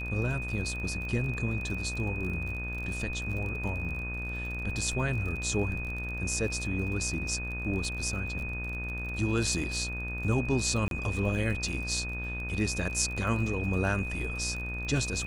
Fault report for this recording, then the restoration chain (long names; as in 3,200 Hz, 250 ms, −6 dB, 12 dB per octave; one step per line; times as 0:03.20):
mains buzz 60 Hz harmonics 31 −37 dBFS
surface crackle 37 per second −36 dBFS
whistle 2,500 Hz −36 dBFS
0:10.88–0:10.91: drop-out 32 ms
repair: click removal
hum removal 60 Hz, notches 31
notch filter 2,500 Hz, Q 30
repair the gap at 0:10.88, 32 ms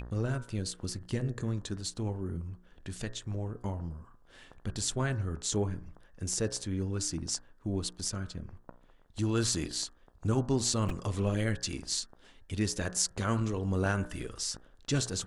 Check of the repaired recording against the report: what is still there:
none of them is left